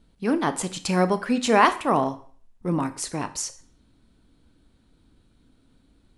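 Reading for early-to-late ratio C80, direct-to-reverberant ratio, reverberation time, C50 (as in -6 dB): 19.5 dB, 10.5 dB, 0.45 s, 15.0 dB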